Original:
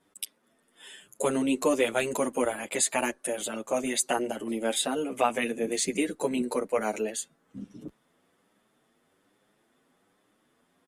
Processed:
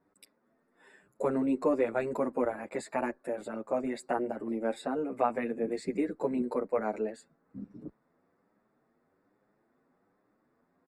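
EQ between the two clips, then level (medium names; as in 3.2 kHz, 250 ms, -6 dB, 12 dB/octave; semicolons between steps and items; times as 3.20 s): boxcar filter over 14 samples; -2.0 dB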